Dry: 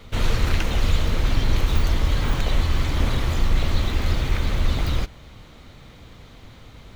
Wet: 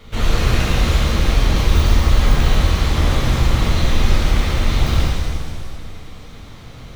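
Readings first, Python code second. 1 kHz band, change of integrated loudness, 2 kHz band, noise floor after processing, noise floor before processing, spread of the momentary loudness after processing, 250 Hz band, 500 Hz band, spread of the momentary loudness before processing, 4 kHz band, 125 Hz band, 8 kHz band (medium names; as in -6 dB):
+7.0 dB, +6.0 dB, +6.0 dB, -37 dBFS, -46 dBFS, 10 LU, +6.5 dB, +6.5 dB, 2 LU, +6.5 dB, +6.0 dB, +8.0 dB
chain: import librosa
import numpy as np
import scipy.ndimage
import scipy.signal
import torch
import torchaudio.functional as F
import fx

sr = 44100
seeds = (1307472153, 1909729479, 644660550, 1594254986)

y = fx.rev_shimmer(x, sr, seeds[0], rt60_s=1.9, semitones=7, shimmer_db=-8, drr_db=-4.5)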